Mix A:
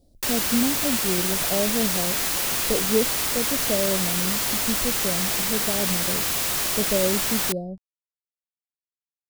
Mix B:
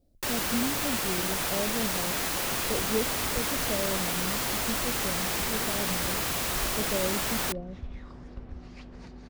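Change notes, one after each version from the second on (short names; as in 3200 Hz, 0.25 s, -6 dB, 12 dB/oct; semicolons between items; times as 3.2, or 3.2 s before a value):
speech -7.5 dB; second sound: unmuted; master: add high shelf 2600 Hz -7.5 dB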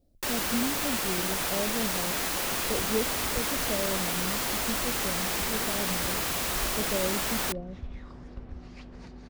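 first sound: add bell 110 Hz -6 dB 0.73 oct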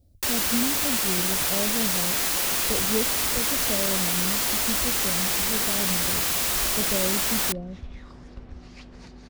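speech: add bell 85 Hz +15 dB 1.5 oct; master: add high shelf 2600 Hz +7.5 dB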